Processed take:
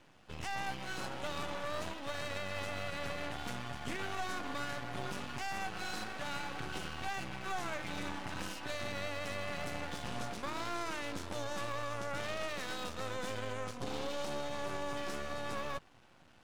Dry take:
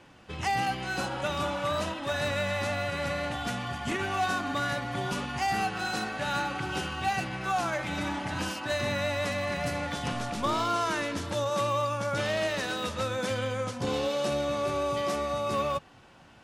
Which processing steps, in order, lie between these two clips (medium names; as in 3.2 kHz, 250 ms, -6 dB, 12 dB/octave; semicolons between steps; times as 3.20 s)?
peak limiter -22 dBFS, peak gain reduction 6 dB; half-wave rectifier; trim -4 dB